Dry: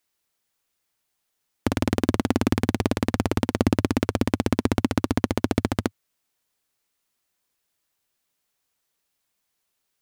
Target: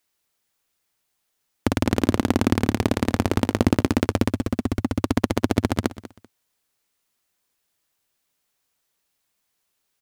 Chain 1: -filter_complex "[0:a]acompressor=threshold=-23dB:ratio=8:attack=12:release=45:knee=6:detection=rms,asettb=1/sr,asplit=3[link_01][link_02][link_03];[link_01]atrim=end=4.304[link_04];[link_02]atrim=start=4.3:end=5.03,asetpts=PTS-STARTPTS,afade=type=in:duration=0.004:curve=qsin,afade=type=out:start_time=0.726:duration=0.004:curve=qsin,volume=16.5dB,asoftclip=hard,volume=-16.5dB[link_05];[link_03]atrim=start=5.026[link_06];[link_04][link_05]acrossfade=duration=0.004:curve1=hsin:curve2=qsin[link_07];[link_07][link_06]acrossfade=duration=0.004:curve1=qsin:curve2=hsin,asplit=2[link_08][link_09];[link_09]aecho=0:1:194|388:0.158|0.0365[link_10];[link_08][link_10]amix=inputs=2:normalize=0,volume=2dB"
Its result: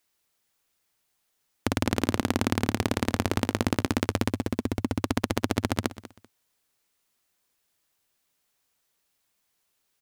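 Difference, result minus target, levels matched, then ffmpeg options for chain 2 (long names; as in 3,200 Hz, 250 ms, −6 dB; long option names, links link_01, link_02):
downward compressor: peak gain reduction +10 dB
-filter_complex "[0:a]asettb=1/sr,asplit=3[link_01][link_02][link_03];[link_01]atrim=end=4.304[link_04];[link_02]atrim=start=4.3:end=5.03,asetpts=PTS-STARTPTS,afade=type=in:duration=0.004:curve=qsin,afade=type=out:start_time=0.726:duration=0.004:curve=qsin,volume=16.5dB,asoftclip=hard,volume=-16.5dB[link_05];[link_03]atrim=start=5.026[link_06];[link_04][link_05]acrossfade=duration=0.004:curve1=hsin:curve2=qsin[link_07];[link_07][link_06]acrossfade=duration=0.004:curve1=qsin:curve2=hsin,asplit=2[link_08][link_09];[link_09]aecho=0:1:194|388:0.158|0.0365[link_10];[link_08][link_10]amix=inputs=2:normalize=0,volume=2dB"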